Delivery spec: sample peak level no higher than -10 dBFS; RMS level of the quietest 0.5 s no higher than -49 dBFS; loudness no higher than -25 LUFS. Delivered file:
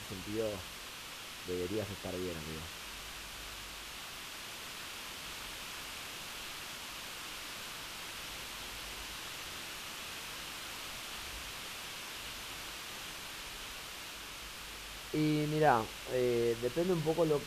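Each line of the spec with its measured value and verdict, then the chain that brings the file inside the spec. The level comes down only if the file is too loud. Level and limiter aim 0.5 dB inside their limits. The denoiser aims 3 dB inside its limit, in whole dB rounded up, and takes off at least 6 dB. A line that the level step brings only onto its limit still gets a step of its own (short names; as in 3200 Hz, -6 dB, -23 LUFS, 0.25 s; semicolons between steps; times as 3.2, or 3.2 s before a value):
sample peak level -14.5 dBFS: OK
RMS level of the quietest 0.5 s -47 dBFS: fail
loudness -38.5 LUFS: OK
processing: denoiser 6 dB, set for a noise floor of -47 dBFS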